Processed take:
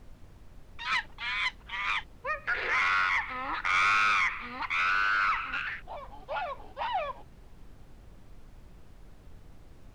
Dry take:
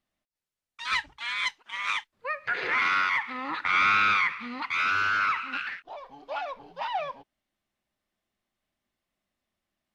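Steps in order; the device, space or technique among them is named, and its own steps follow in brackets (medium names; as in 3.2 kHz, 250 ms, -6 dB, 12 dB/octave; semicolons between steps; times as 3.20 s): aircraft cabin announcement (band-pass 410–4100 Hz; saturation -19 dBFS, distortion -18 dB; brown noise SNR 16 dB)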